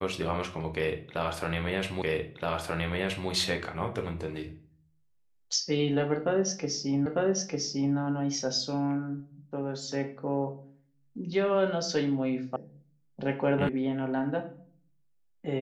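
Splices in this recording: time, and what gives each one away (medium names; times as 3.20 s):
2.02 s: repeat of the last 1.27 s
7.06 s: repeat of the last 0.9 s
12.56 s: sound stops dead
13.69 s: sound stops dead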